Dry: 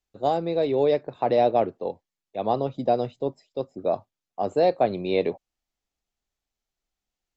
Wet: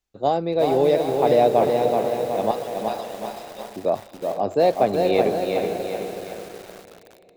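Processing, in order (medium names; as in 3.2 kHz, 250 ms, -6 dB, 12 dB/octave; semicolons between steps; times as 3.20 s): 2.51–3.68 s: high-pass 1.3 kHz 12 dB/octave; echo that smears into a reverb 476 ms, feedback 41%, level -8 dB; bit-crushed delay 374 ms, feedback 55%, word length 7-bit, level -4 dB; trim +2.5 dB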